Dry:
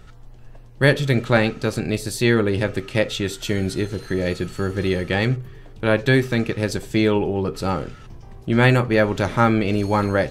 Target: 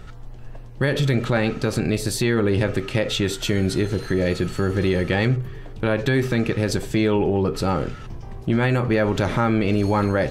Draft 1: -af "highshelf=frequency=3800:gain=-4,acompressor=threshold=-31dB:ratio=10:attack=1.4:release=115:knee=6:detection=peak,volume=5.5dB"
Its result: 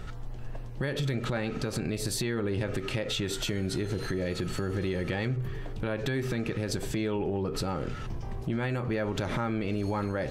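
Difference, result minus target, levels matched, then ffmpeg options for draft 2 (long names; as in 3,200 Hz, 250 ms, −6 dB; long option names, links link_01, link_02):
downward compressor: peak gain reduction +11 dB
-af "highshelf=frequency=3800:gain=-4,acompressor=threshold=-19dB:ratio=10:attack=1.4:release=115:knee=6:detection=peak,volume=5.5dB"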